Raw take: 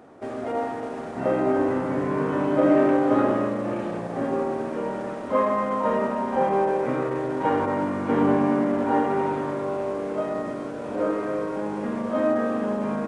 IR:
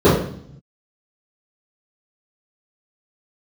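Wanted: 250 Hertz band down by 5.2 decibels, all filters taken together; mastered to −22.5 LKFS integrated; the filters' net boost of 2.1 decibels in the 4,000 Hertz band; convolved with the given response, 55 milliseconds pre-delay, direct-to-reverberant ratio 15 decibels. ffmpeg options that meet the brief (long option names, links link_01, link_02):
-filter_complex "[0:a]equalizer=frequency=250:width_type=o:gain=-6.5,equalizer=frequency=4000:width_type=o:gain=3,asplit=2[link_01][link_02];[1:a]atrim=start_sample=2205,adelay=55[link_03];[link_02][link_03]afir=irnorm=-1:irlink=0,volume=-43.5dB[link_04];[link_01][link_04]amix=inputs=2:normalize=0,volume=4dB"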